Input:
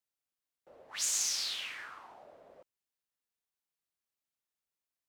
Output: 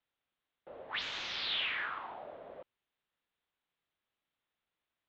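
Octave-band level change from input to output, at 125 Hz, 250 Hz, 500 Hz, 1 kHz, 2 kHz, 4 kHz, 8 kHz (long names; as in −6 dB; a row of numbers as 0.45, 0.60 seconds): can't be measured, +8.0 dB, +8.0 dB, +8.0 dB, +7.0 dB, +0.5 dB, −27.0 dB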